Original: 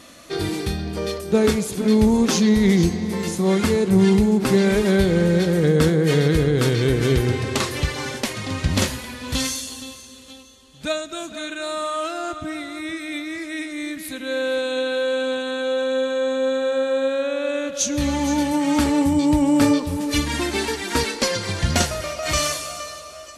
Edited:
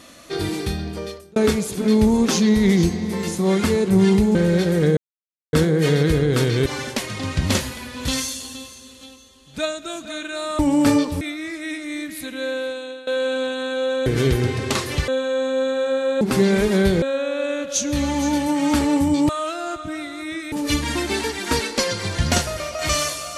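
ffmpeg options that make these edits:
-filter_complex "[0:a]asplit=14[a][b][c][d][e][f][g][h][i][j][k][l][m][n];[a]atrim=end=1.36,asetpts=PTS-STARTPTS,afade=t=out:st=0.82:d=0.54[o];[b]atrim=start=1.36:end=4.352,asetpts=PTS-STARTPTS,afade=t=in:d=0.004:c=hsin[p];[c]atrim=start=5.158:end=5.78,asetpts=PTS-STARTPTS,afade=t=out:st=0.618:d=0.004:c=hsin,apad=pad_dur=0.56[q];[d]atrim=start=5.78:end=6.912,asetpts=PTS-STARTPTS,afade=t=in:d=0.004:c=hsin[r];[e]atrim=start=7.928:end=11.862[s];[f]atrim=start=19.338:end=19.962[t];[g]atrim=start=13.088:end=14.95,asetpts=PTS-STARTPTS,afade=t=out:st=1.152:d=0.71:silence=0.11885[u];[h]atrim=start=14.95:end=15.942,asetpts=PTS-STARTPTS,afade=t=in:d=0.004:c=hsin:silence=0.11885[v];[i]atrim=start=6.908:end=7.932[w];[j]atrim=start=15.938:end=17.072[x];[k]atrim=start=4.348:end=5.162[y];[l]atrim=start=17.068:end=19.342[z];[m]atrim=start=11.858:end=13.092[aa];[n]atrim=start=19.958[ab];[o][p]concat=n=2:v=0:a=1[ac];[q][r]concat=n=2:v=0:a=1[ad];[ac][ad]acrossfade=d=0.004:c1=hsin:c2=hsin[ae];[ae][s]acrossfade=d=0.004:c1=hsin:c2=hsin[af];[af][t]acrossfade=d=0.004:c1=hsin:c2=hsin[ag];[u][v]concat=n=2:v=0:a=1[ah];[ag][ah]acrossfade=d=0.004:c1=hsin:c2=hsin[ai];[ai][w]acrossfade=d=0.004:c1=hsin:c2=hsin[aj];[aj][x]acrossfade=d=0.004:c1=hsin:c2=hsin[ak];[ak][y]acrossfade=d=0.004:c1=hsin:c2=hsin[al];[al][z]acrossfade=d=0.004:c1=hsin:c2=hsin[am];[am][aa]acrossfade=d=0.004:c1=hsin:c2=hsin[an];[an][ab]acrossfade=d=0.004:c1=hsin:c2=hsin"

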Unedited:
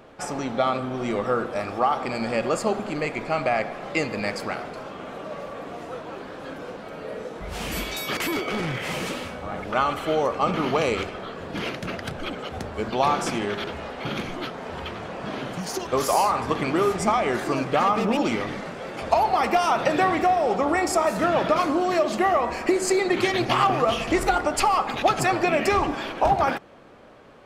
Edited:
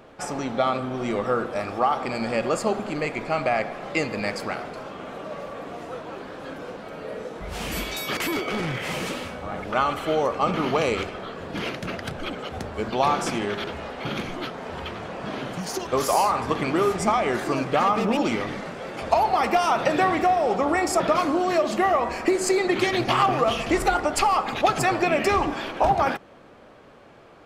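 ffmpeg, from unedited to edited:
-filter_complex "[0:a]asplit=2[a][b];[a]atrim=end=21.002[c];[b]atrim=start=21.408[d];[c][d]acrossfade=d=0.004:c1=hsin:c2=hsin"

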